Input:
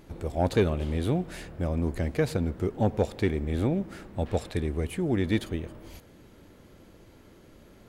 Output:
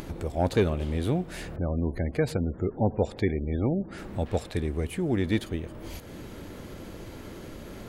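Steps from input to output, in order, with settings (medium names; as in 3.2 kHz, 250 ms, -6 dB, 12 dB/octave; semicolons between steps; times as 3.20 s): 1.56–3.98 s: spectral gate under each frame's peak -30 dB strong; upward compressor, threshold -29 dBFS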